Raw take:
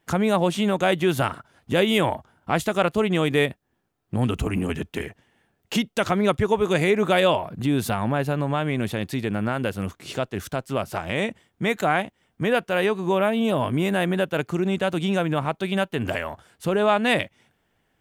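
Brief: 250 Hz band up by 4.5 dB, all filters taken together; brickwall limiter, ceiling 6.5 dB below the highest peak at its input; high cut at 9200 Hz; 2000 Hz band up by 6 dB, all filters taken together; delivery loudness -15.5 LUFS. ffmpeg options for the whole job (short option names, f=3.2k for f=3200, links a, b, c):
-af "lowpass=9.2k,equalizer=f=250:t=o:g=6,equalizer=f=2k:t=o:g=7.5,volume=6dB,alimiter=limit=-3.5dB:level=0:latency=1"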